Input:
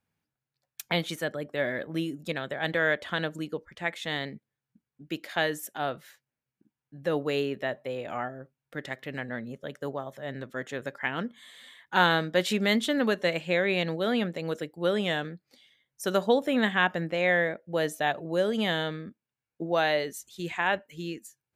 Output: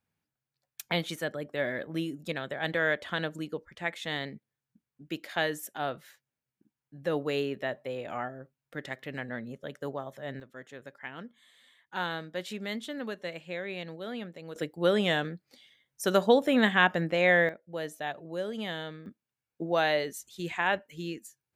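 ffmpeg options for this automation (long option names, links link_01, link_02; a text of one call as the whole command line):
ffmpeg -i in.wav -af "asetnsamples=nb_out_samples=441:pad=0,asendcmd='10.4 volume volume -11dB;14.56 volume volume 1.5dB;17.49 volume volume -8dB;19.06 volume volume -1dB',volume=-2dB" out.wav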